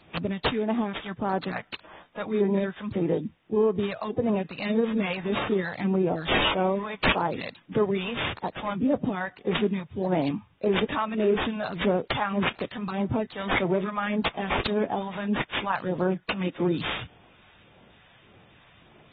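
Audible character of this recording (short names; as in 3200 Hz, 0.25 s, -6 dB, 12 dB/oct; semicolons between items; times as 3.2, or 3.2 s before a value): phasing stages 2, 1.7 Hz, lowest notch 320–3300 Hz; aliases and images of a low sample rate 7700 Hz, jitter 0%; AAC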